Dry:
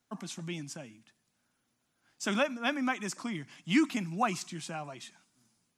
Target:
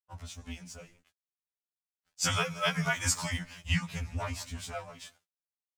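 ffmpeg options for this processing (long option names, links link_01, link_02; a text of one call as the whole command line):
ffmpeg -i in.wav -filter_complex "[0:a]dynaudnorm=framelen=300:gausssize=9:maxgain=9dB,asplit=2[link_01][link_02];[link_02]adelay=169,lowpass=frequency=3600:poles=1,volume=-23.5dB,asplit=2[link_03][link_04];[link_04]adelay=169,lowpass=frequency=3600:poles=1,volume=0.43,asplit=2[link_05][link_06];[link_06]adelay=169,lowpass=frequency=3600:poles=1,volume=0.43[link_07];[link_01][link_03][link_05][link_07]amix=inputs=4:normalize=0,acompressor=threshold=-23dB:ratio=10,asettb=1/sr,asplit=3[link_08][link_09][link_10];[link_08]atrim=end=3.884[link_11];[link_09]atrim=start=3.88:end=5.02,asetpts=PTS-STARTPTS,afade=type=in:duration=0.004:curve=qsin,afade=type=out:start_time=1.136:duration=0.004:curve=qsin,aeval=exprs='(tanh(14.1*val(0)+0.7)-tanh(0.7))/14.1':channel_layout=same[link_12];[link_10]atrim=start=5.016[link_13];[link_11][link_12]acrossfade=duration=0.004:curve1=hsin:curve2=qsin[link_14];[link_14][link_13]acrossfade=duration=0.004:curve1=qsin:curve2=hsin,afreqshift=-100,equalizer=frequency=350:width_type=o:width=0.38:gain=-14.5,aeval=exprs='sgn(val(0))*max(abs(val(0))-0.00178,0)':channel_layout=same,asplit=3[link_15][link_16][link_17];[link_15]afade=type=out:start_time=2.23:duration=0.02[link_18];[link_16]highshelf=frequency=3200:gain=9.5,afade=type=in:start_time=2.23:duration=0.02,afade=type=out:start_time=3.36:duration=0.02[link_19];[link_17]afade=type=in:start_time=3.36:duration=0.02[link_20];[link_18][link_19][link_20]amix=inputs=3:normalize=0,afftfilt=real='re*2*eq(mod(b,4),0)':imag='im*2*eq(mod(b,4),0)':win_size=2048:overlap=0.75" out.wav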